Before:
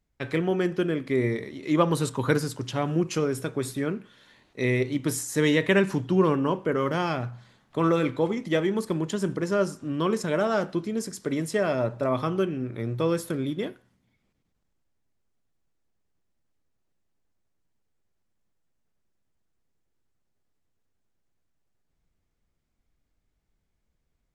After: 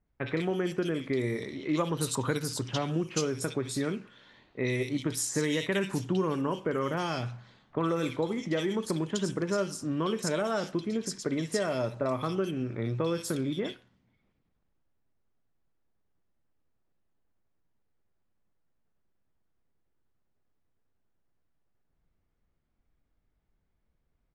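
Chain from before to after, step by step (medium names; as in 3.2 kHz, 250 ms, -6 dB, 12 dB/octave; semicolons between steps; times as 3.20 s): level-controlled noise filter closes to 2.1 kHz, open at -19.5 dBFS; treble shelf 3 kHz +9.5 dB; compression 3:1, threshold -27 dBFS, peak gain reduction 9.5 dB; bands offset in time lows, highs 60 ms, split 2.3 kHz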